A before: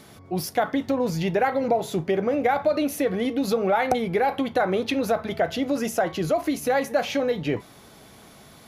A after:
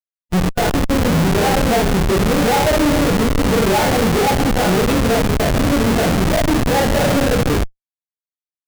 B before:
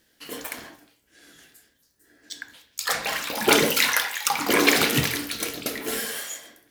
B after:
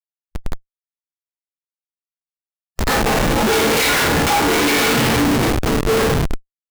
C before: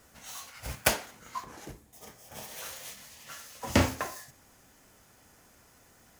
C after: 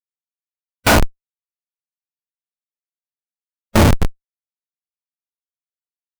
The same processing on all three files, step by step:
two-slope reverb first 0.46 s, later 4.9 s, from -18 dB, DRR -6.5 dB; Schmitt trigger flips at -17 dBFS; harmonic-percussive split percussive -6 dB; match loudness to -16 LUFS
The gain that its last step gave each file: +5.0, +5.5, +23.0 dB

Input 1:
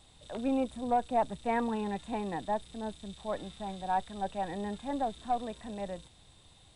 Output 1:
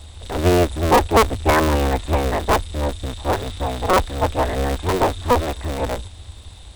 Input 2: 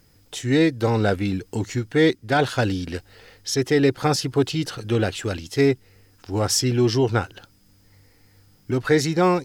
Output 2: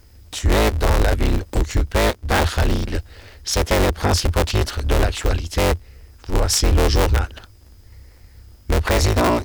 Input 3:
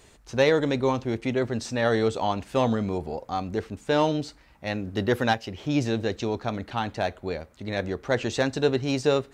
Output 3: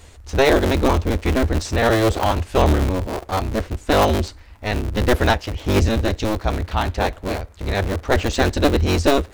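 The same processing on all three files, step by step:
cycle switcher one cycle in 3, inverted; resonant low shelf 110 Hz +7.5 dB, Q 3; limiter -11.5 dBFS; match loudness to -20 LUFS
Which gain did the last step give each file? +14.0, +4.0, +6.5 dB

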